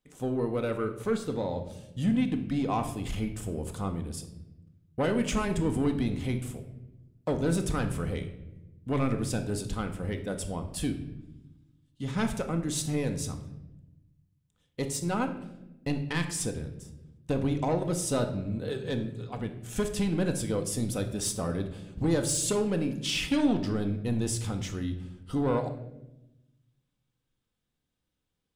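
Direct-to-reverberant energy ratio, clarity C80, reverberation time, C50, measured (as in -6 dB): 5.0 dB, 13.0 dB, 0.95 s, 10.0 dB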